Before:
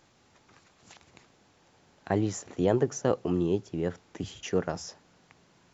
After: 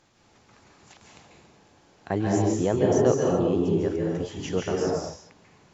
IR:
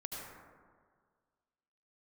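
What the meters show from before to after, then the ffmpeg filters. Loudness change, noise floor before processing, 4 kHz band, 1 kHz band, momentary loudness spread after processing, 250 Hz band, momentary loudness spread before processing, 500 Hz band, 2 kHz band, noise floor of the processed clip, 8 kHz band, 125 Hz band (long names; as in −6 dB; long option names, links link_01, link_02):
+5.5 dB, −64 dBFS, +3.5 dB, +5.5 dB, 10 LU, +5.5 dB, 13 LU, +6.0 dB, +3.5 dB, −60 dBFS, can't be measured, +5.5 dB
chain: -filter_complex "[1:a]atrim=start_sample=2205,afade=type=out:start_time=0.26:duration=0.01,atrim=end_sample=11907,asetrate=23373,aresample=44100[link_01];[0:a][link_01]afir=irnorm=-1:irlink=0,volume=1.5dB"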